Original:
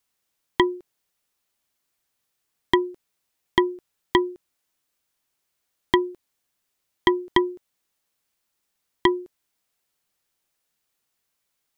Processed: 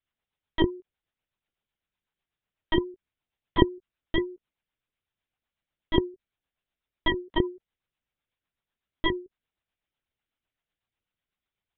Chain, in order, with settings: LPC vocoder at 8 kHz pitch kept; rotary cabinet horn 8 Hz; trim -3.5 dB

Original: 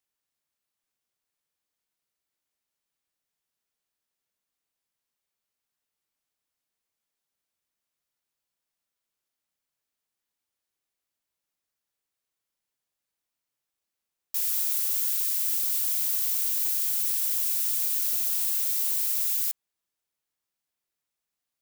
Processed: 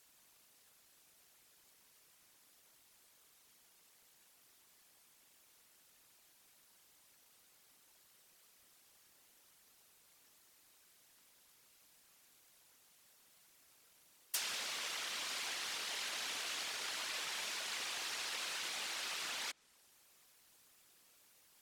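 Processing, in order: high-pass 200 Hz 24 dB/octave; added noise blue -67 dBFS; tilt EQ -2.5 dB/octave; whisper effect; low-pass that closes with the level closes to 1.3 kHz, closed at -28 dBFS; trim +9.5 dB

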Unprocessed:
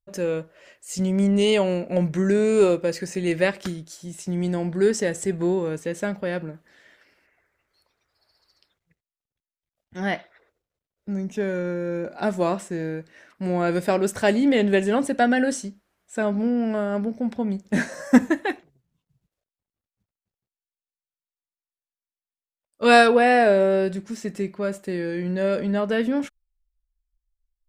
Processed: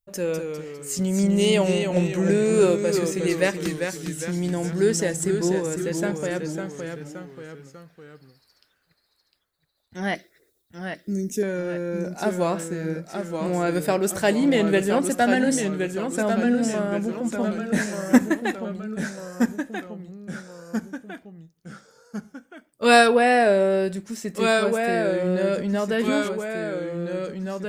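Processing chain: 10.15–11.43 s: FFT filter 160 Hz 0 dB, 370 Hz +7 dB, 930 Hz -20 dB, 1.9 kHz -3 dB, 3 kHz -7 dB, 5.2 kHz +7 dB, 8.9 kHz +12 dB; ever faster or slower copies 192 ms, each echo -1 st, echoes 3, each echo -6 dB; treble shelf 8.1 kHz +12 dB; trim -1 dB

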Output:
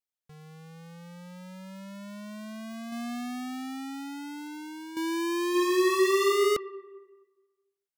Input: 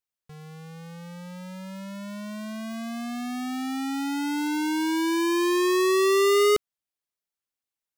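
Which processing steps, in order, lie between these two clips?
2.92–4.97 s: compressor with a negative ratio -32 dBFS, ratio -1; 5.49–6.25 s: reverb throw, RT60 1.4 s, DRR -1.5 dB; trim -5.5 dB

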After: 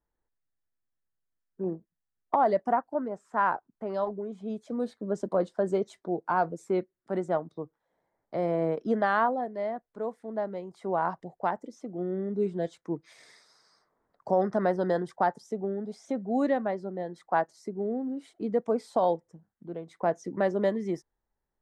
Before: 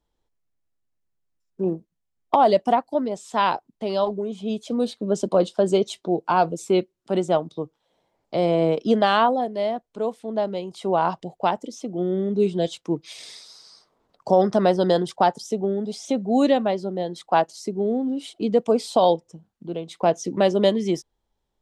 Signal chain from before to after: resonant high shelf 2.3 kHz -8.5 dB, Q 3, from 2.70 s -14 dB, from 3.94 s -7.5 dB; trim -8 dB

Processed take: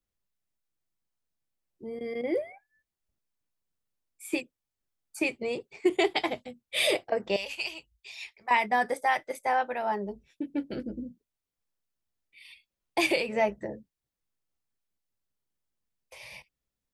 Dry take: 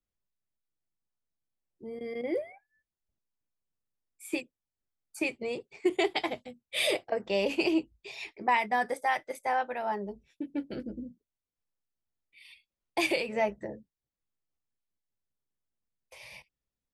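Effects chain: 7.36–8.51 s: amplifier tone stack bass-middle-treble 10-0-10; trim +2.5 dB

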